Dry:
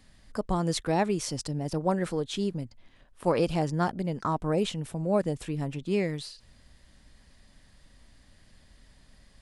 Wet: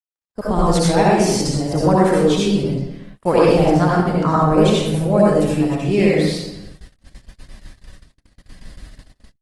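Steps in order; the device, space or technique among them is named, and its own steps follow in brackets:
speakerphone in a meeting room (convolution reverb RT60 0.95 s, pre-delay 61 ms, DRR −5.5 dB; automatic gain control gain up to 10 dB; noise gate −35 dBFS, range −56 dB; Opus 20 kbit/s 48,000 Hz)

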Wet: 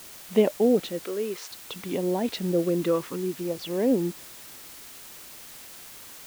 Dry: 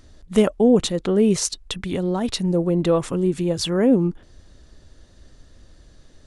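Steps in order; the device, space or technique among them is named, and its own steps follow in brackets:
shortwave radio (band-pass filter 260–2,800 Hz; amplitude tremolo 0.43 Hz, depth 48%; auto-filter notch saw down 0.59 Hz 540–1,800 Hz; white noise bed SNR 17 dB)
0:01.05–0:01.51: high-pass filter 380 Hz 12 dB per octave

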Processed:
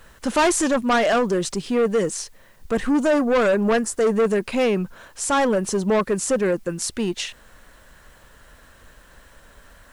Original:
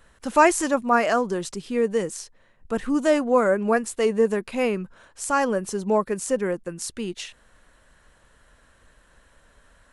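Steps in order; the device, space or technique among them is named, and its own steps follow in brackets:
0:03.03–0:04.16: flat-topped bell 3,000 Hz −8.5 dB 1.1 octaves
compact cassette (soft clipping −22 dBFS, distortion −7 dB; low-pass filter 10,000 Hz; tape wow and flutter 14 cents; white noise bed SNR 40 dB)
level +7.5 dB

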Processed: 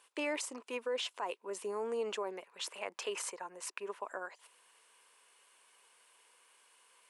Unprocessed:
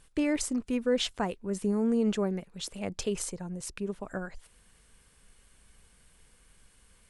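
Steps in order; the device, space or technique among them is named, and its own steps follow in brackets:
laptop speaker (high-pass filter 400 Hz 24 dB per octave; parametric band 1,000 Hz +10.5 dB 0.38 octaves; parametric band 2,700 Hz +5.5 dB 0.51 octaves; brickwall limiter −25 dBFS, peak gain reduction 10 dB)
0:02.43–0:04.01: drawn EQ curve 490 Hz 0 dB, 1,800 Hz +7 dB, 3,300 Hz 0 dB
level −3 dB

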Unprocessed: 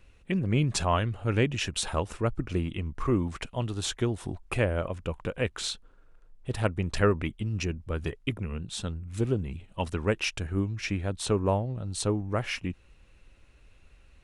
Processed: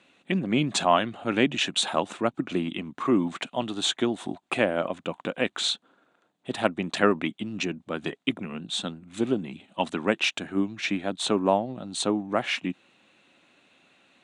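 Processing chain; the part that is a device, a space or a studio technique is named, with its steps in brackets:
television speaker (loudspeaker in its box 190–8,500 Hz, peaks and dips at 270 Hz +3 dB, 450 Hz −6 dB, 720 Hz +5 dB, 3,600 Hz +7 dB, 5,300 Hz −8 dB)
level +4.5 dB

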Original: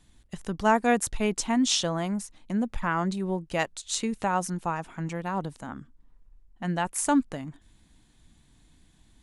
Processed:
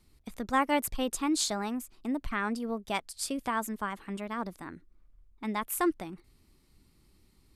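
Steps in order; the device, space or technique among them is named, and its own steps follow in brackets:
nightcore (speed change +22%)
level −4.5 dB

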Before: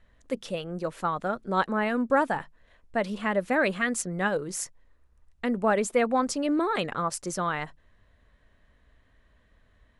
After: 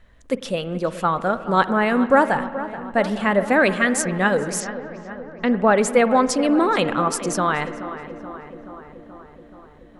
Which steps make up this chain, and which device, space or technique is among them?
dub delay into a spring reverb (feedback echo with a low-pass in the loop 428 ms, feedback 70%, low-pass 2,200 Hz, level −13 dB; spring reverb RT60 2.1 s, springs 49 ms, chirp 60 ms, DRR 14 dB)
0:04.60–0:05.78: low-pass filter 5,400 Hz 24 dB per octave
level +7.5 dB

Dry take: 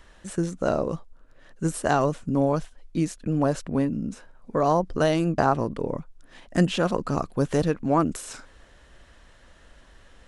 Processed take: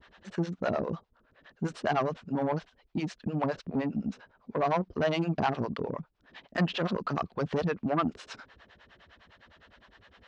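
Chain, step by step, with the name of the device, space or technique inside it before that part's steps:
0:05.08–0:05.81: high-shelf EQ 4,300 Hz +5.5 dB
guitar amplifier with harmonic tremolo (two-band tremolo in antiphase 9.8 Hz, depth 100%, crossover 460 Hz; soft clipping −22.5 dBFS, distortion −11 dB; loudspeaker in its box 100–4,500 Hz, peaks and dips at 140 Hz −5 dB, 300 Hz −5 dB, 530 Hz −4 dB)
level +4 dB

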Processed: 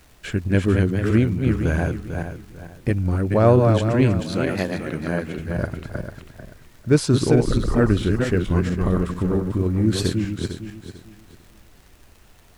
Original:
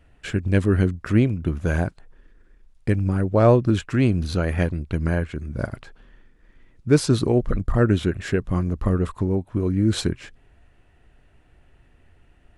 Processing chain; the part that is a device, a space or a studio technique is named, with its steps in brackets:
feedback delay that plays each chunk backwards 223 ms, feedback 52%, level −4 dB
warped LP (wow of a warped record 33 1/3 rpm, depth 100 cents; surface crackle; pink noise bed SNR 35 dB)
0:04.20–0:05.39: high-pass filter 180 Hz 12 dB per octave

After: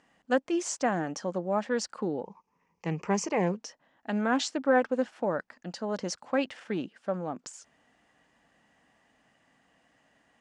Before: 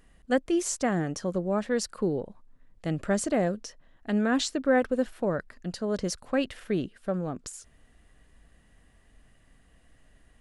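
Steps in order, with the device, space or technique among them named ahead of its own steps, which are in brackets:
0:02.24–0:03.57: EQ curve with evenly spaced ripples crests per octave 0.79, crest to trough 14 dB
full-range speaker at full volume (highs frequency-modulated by the lows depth 0.12 ms; loudspeaker in its box 230–7,200 Hz, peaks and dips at 400 Hz −6 dB, 850 Hz +7 dB, 3,900 Hz −4 dB)

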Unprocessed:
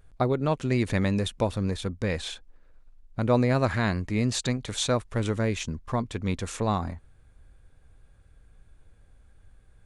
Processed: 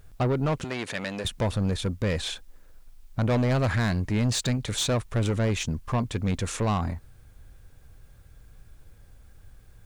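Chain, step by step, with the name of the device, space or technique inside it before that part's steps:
open-reel tape (soft clipping −25 dBFS, distortion −9 dB; parametric band 120 Hz +3.5 dB; white noise bed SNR 42 dB)
0:00.64–0:01.25: meter weighting curve A
level +4 dB

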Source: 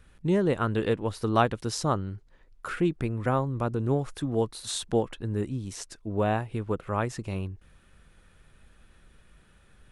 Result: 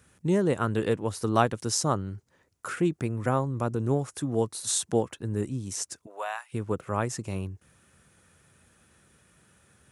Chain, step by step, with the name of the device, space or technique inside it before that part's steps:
budget condenser microphone (high-pass filter 80 Hz 24 dB per octave; high shelf with overshoot 5,000 Hz +6.5 dB, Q 1.5)
0:06.05–0:06.52: high-pass filter 480 Hz → 1,400 Hz 24 dB per octave

